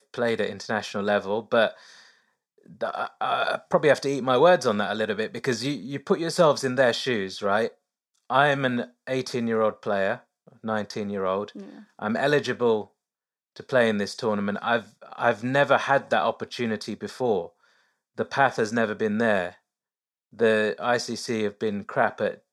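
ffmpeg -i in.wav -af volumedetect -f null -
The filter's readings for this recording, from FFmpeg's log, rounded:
mean_volume: -25.5 dB
max_volume: -5.3 dB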